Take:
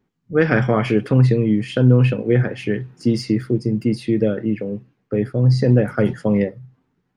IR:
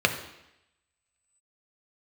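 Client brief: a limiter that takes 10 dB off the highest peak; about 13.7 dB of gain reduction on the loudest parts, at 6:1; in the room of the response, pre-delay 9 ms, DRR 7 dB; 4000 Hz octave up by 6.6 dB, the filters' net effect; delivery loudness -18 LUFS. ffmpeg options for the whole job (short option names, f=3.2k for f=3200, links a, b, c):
-filter_complex "[0:a]equalizer=f=4k:t=o:g=9,acompressor=threshold=-24dB:ratio=6,alimiter=limit=-21dB:level=0:latency=1,asplit=2[a][b];[1:a]atrim=start_sample=2205,adelay=9[c];[b][c]afir=irnorm=-1:irlink=0,volume=-22.5dB[d];[a][d]amix=inputs=2:normalize=0,volume=13dB"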